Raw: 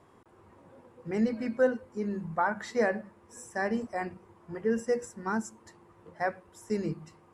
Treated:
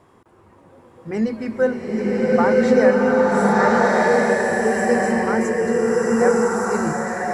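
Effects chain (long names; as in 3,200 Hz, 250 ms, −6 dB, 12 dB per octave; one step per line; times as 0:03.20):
slow-attack reverb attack 1,440 ms, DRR −8 dB
level +6 dB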